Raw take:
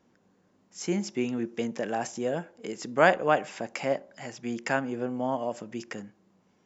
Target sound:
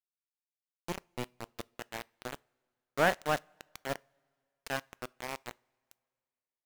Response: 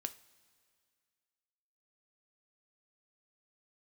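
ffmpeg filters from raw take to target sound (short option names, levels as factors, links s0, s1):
-filter_complex "[0:a]aeval=exprs='0.562*(cos(1*acos(clip(val(0)/0.562,-1,1)))-cos(1*PI/2))+0.00355*(cos(3*acos(clip(val(0)/0.562,-1,1)))-cos(3*PI/2))+0.0224*(cos(6*acos(clip(val(0)/0.562,-1,1)))-cos(6*PI/2))+0.00631*(cos(7*acos(clip(val(0)/0.562,-1,1)))-cos(7*PI/2))':c=same,aeval=exprs='val(0)*gte(abs(val(0)),0.075)':c=same,asplit=2[s0][s1];[1:a]atrim=start_sample=2205[s2];[s1][s2]afir=irnorm=-1:irlink=0,volume=0.335[s3];[s0][s3]amix=inputs=2:normalize=0,volume=0.398"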